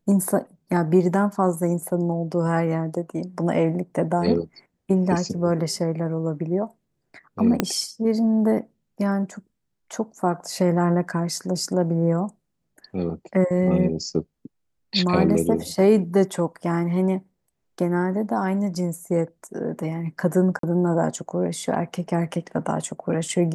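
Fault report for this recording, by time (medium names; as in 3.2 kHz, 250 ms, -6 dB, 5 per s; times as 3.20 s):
7.60 s: pop -5 dBFS
20.59–20.63 s: dropout 43 ms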